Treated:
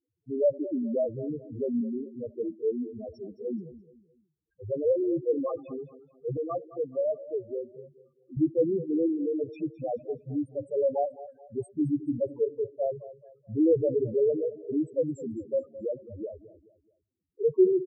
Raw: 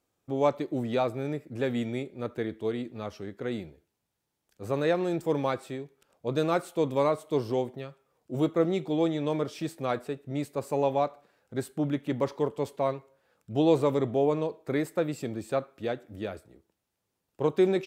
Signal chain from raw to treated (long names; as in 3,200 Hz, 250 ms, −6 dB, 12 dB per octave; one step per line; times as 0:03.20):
spectral peaks only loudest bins 2
0:06.37–0:08.37: spectral tilt +4.5 dB per octave
repeating echo 214 ms, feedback 36%, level −16 dB
level +4 dB